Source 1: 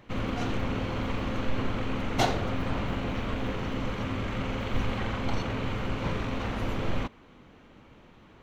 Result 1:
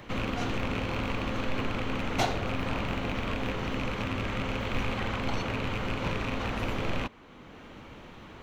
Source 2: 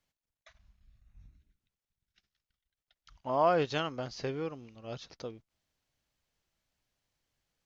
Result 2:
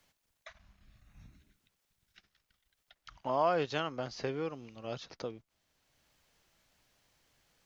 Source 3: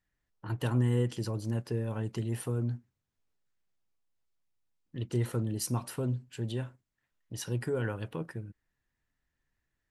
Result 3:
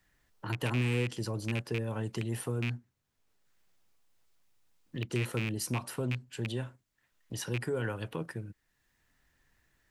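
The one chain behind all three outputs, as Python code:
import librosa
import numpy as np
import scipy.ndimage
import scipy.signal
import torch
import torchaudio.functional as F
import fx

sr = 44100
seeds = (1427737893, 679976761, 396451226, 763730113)

y = fx.rattle_buzz(x, sr, strikes_db=-29.0, level_db=-25.0)
y = fx.low_shelf(y, sr, hz=350.0, db=-3.5)
y = fx.band_squash(y, sr, depth_pct=40)
y = F.gain(torch.from_numpy(y), 1.0).numpy()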